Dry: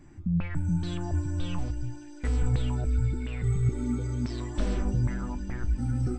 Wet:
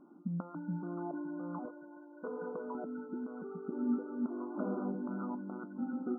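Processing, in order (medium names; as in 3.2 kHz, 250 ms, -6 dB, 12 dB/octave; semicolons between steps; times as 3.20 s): brick-wall FIR band-pass 180–1500 Hz; 1.65–2.75 s: comb 1.9 ms, depth 64%; trim -1.5 dB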